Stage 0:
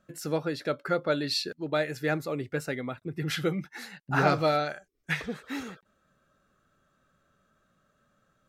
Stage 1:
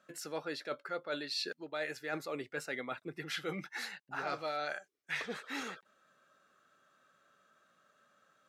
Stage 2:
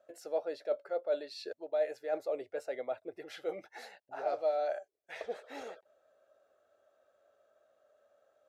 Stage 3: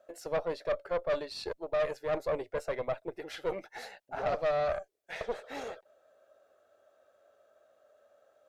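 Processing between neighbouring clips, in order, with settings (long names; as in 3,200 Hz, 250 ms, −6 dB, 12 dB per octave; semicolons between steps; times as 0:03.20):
meter weighting curve A; reversed playback; downward compressor 5 to 1, threshold −38 dBFS, peak gain reduction 16.5 dB; reversed playback; level +2 dB
drawn EQ curve 100 Hz 0 dB, 150 Hz −21 dB, 640 Hz +11 dB, 1,100 Hz −10 dB
tube saturation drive 33 dB, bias 0.65; level +8 dB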